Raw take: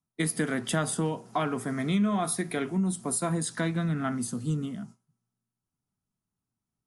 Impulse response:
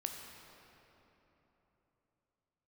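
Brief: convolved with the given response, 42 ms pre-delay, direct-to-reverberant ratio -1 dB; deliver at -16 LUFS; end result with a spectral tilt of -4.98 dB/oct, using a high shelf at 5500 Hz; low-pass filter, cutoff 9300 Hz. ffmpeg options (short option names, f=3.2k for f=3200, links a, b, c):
-filter_complex "[0:a]lowpass=9.3k,highshelf=f=5.5k:g=5.5,asplit=2[a][b];[1:a]atrim=start_sample=2205,adelay=42[c];[b][c]afir=irnorm=-1:irlink=0,volume=1.5dB[d];[a][d]amix=inputs=2:normalize=0,volume=9dB"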